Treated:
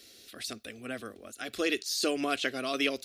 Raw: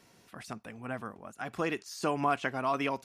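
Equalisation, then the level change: bell 3900 Hz +12 dB 0.73 oct; high shelf 8200 Hz +11 dB; fixed phaser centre 380 Hz, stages 4; +3.5 dB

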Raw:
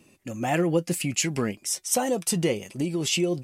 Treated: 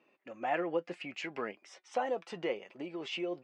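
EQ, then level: BPF 540–2200 Hz; air absorption 81 m; -3.5 dB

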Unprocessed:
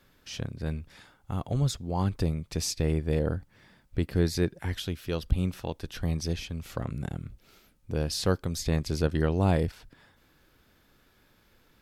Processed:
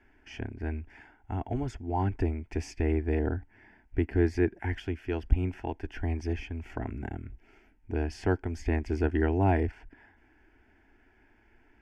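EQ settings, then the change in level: LPF 2900 Hz 12 dB/oct; fixed phaser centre 790 Hz, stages 8; +4.0 dB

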